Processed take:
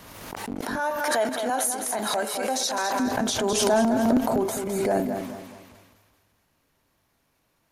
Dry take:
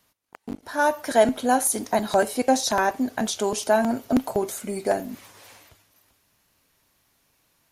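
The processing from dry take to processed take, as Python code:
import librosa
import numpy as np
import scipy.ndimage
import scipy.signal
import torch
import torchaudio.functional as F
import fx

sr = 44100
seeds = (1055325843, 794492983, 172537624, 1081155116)

y = fx.high_shelf(x, sr, hz=2100.0, db=-9.0)
y = fx.transient(y, sr, attack_db=-4, sustain_db=8)
y = fx.highpass(y, sr, hz=1000.0, slope=6, at=(0.61, 3.0))
y = fx.echo_feedback(y, sr, ms=209, feedback_pct=34, wet_db=-7.5)
y = fx.pre_swell(y, sr, db_per_s=32.0)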